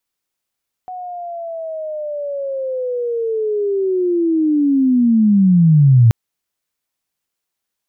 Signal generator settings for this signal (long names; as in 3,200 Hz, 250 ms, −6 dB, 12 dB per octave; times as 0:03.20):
glide linear 740 Hz → 110 Hz −26 dBFS → −5.5 dBFS 5.23 s